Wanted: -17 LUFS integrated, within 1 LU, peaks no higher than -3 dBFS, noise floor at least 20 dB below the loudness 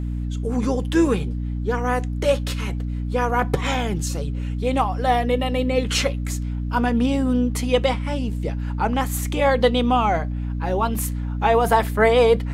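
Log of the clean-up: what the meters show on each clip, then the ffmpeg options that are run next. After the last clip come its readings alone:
hum 60 Hz; highest harmonic 300 Hz; hum level -23 dBFS; loudness -22.0 LUFS; peak level -4.5 dBFS; loudness target -17.0 LUFS
-> -af "bandreject=f=60:t=h:w=6,bandreject=f=120:t=h:w=6,bandreject=f=180:t=h:w=6,bandreject=f=240:t=h:w=6,bandreject=f=300:t=h:w=6"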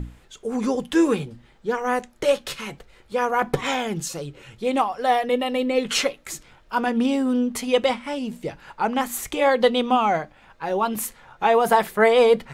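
hum not found; loudness -22.5 LUFS; peak level -5.0 dBFS; loudness target -17.0 LUFS
-> -af "volume=1.88,alimiter=limit=0.708:level=0:latency=1"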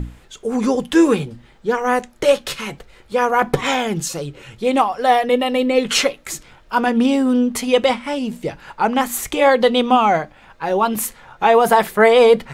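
loudness -17.5 LUFS; peak level -3.0 dBFS; noise floor -49 dBFS

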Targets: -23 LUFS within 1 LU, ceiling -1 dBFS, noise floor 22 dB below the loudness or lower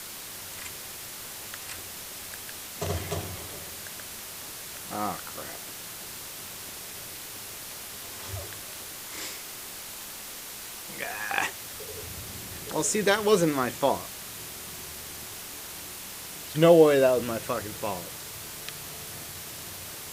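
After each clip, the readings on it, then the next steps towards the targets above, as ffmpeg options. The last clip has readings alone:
noise floor -41 dBFS; noise floor target -53 dBFS; loudness -30.5 LUFS; peak level -6.0 dBFS; loudness target -23.0 LUFS
-> -af "afftdn=nr=12:nf=-41"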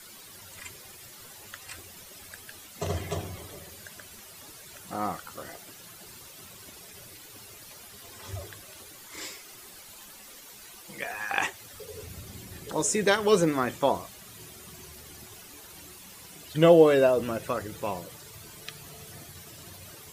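noise floor -48 dBFS; noise floor target -49 dBFS
-> -af "afftdn=nr=6:nf=-48"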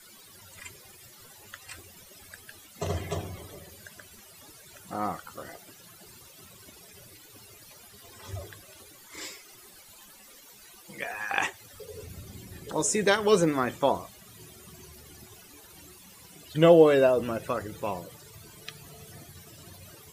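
noise floor -52 dBFS; loudness -26.0 LUFS; peak level -6.0 dBFS; loudness target -23.0 LUFS
-> -af "volume=1.41"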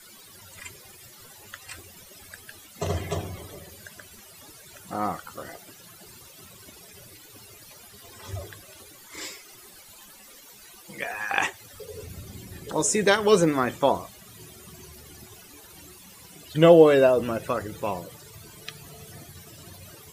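loudness -23.0 LUFS; peak level -3.0 dBFS; noise floor -49 dBFS

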